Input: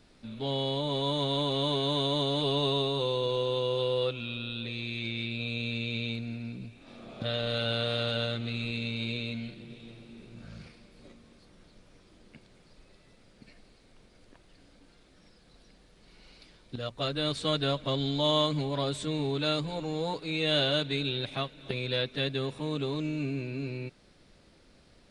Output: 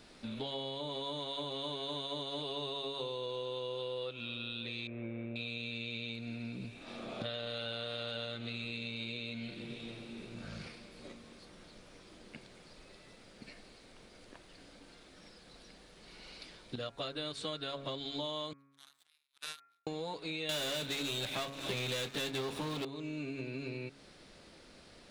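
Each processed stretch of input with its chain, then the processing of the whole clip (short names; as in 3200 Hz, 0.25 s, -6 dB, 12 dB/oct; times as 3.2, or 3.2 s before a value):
4.87–5.36 inverse Chebyshev low-pass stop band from 6300 Hz, stop band 70 dB + bell 580 Hz +8.5 dB 0.36 oct
18.53–19.87 steep high-pass 1300 Hz 48 dB/oct + high shelf 4100 Hz -10.5 dB + power-law curve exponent 3
20.49–22.85 sample leveller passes 5 + doubler 25 ms -12 dB
whole clip: low shelf 190 Hz -9 dB; de-hum 138.2 Hz, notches 18; compressor 6:1, threshold -43 dBFS; gain +5.5 dB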